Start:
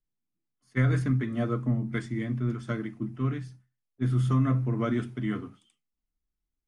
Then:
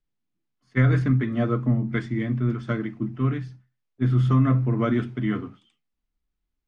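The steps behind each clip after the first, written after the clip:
low-pass filter 4,200 Hz 12 dB per octave
level +5 dB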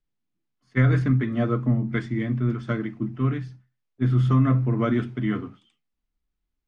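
no processing that can be heard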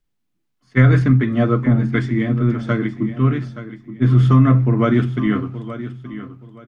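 repeating echo 874 ms, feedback 26%, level −13 dB
level +7 dB

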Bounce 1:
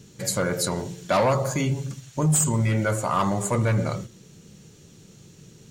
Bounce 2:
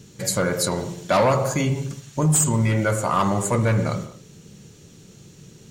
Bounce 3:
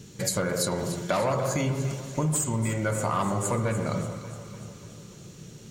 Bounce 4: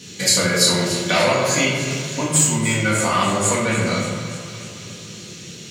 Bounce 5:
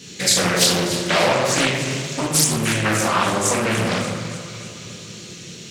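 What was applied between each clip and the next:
convolution reverb, pre-delay 49 ms, DRR 12 dB; level +2.5 dB
downward compressor, threshold −24 dBFS, peak gain reduction 9 dB; delay that swaps between a low-pass and a high-pass 147 ms, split 1,300 Hz, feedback 75%, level −9.5 dB
meter weighting curve D; rectangular room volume 220 cubic metres, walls mixed, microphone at 1.9 metres; level +1.5 dB
mains-hum notches 50/100/150/200 Hz; highs frequency-modulated by the lows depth 0.67 ms

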